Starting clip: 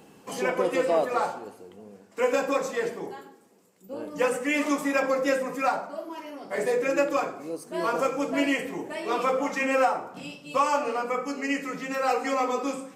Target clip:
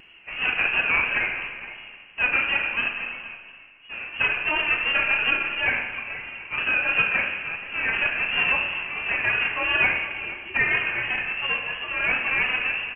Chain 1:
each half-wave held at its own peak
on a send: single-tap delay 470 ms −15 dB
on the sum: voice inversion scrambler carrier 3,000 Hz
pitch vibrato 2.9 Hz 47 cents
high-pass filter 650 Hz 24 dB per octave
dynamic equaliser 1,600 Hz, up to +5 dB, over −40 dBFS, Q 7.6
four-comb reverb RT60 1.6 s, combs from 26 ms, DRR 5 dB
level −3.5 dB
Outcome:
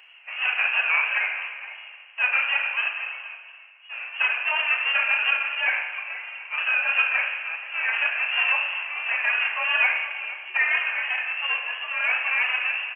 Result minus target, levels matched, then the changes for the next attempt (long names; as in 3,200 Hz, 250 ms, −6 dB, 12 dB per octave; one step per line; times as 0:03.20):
500 Hz band −6.0 dB
remove: high-pass filter 650 Hz 24 dB per octave